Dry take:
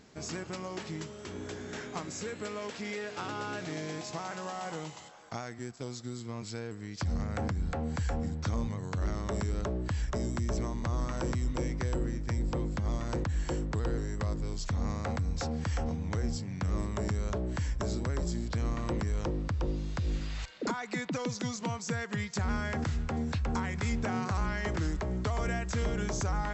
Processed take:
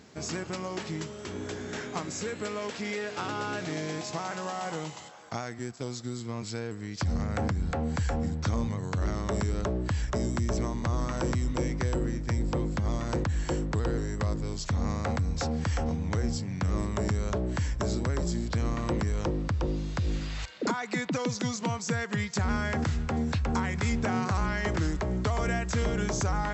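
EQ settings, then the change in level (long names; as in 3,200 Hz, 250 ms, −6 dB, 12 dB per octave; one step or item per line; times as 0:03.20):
high-pass filter 51 Hz
+4.0 dB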